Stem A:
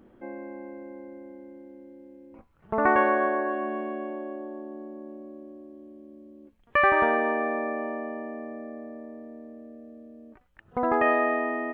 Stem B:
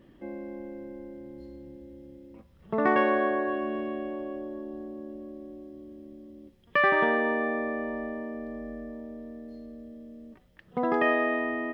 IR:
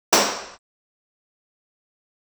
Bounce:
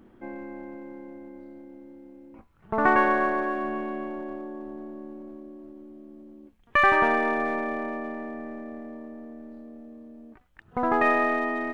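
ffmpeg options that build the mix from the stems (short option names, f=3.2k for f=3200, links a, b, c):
-filter_complex "[0:a]equalizer=f=550:t=o:w=0.54:g=-6,volume=2dB[a];[1:a]flanger=delay=19:depth=7.1:speed=1,aeval=exprs='abs(val(0))':c=same,volume=-1,volume=-12dB[b];[a][b]amix=inputs=2:normalize=0"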